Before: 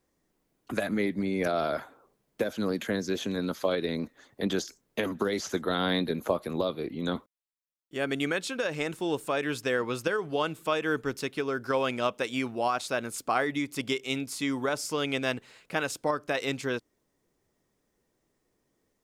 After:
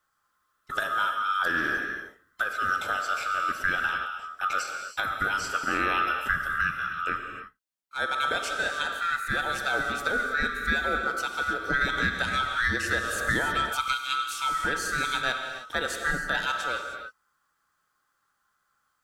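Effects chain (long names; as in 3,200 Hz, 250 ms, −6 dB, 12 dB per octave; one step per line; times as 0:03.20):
neighbouring bands swapped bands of 1,000 Hz
reverb whose tail is shaped and stops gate 340 ms flat, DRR 3.5 dB
0:11.81–0:13.93: multiband upward and downward compressor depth 100%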